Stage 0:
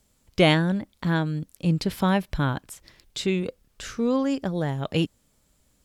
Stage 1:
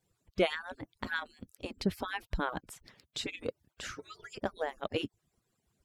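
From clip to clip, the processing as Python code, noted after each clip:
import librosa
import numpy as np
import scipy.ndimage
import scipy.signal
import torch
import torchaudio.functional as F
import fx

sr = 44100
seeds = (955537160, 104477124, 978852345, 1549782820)

y = fx.hpss_only(x, sr, part='percussive')
y = fx.rider(y, sr, range_db=4, speed_s=0.5)
y = fx.high_shelf(y, sr, hz=3700.0, db=-7.5)
y = y * 10.0 ** (-4.5 / 20.0)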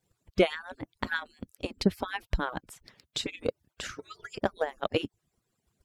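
y = fx.transient(x, sr, attack_db=7, sustain_db=0)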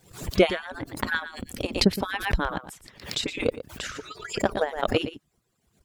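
y = x + 10.0 ** (-13.0 / 20.0) * np.pad(x, (int(116 * sr / 1000.0), 0))[:len(x)]
y = fx.pre_swell(y, sr, db_per_s=120.0)
y = y * 10.0 ** (4.0 / 20.0)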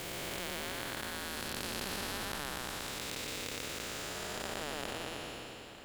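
y = fx.spec_blur(x, sr, span_ms=771.0)
y = fx.echo_feedback(y, sr, ms=448, feedback_pct=59, wet_db=-22.0)
y = fx.spectral_comp(y, sr, ratio=2.0)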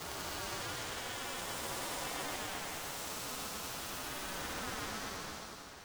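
y = fx.partial_stretch(x, sr, pct=123)
y = y * np.sin(2.0 * np.pi * 760.0 * np.arange(len(y)) / sr)
y = y * 10.0 ** (6.5 / 20.0)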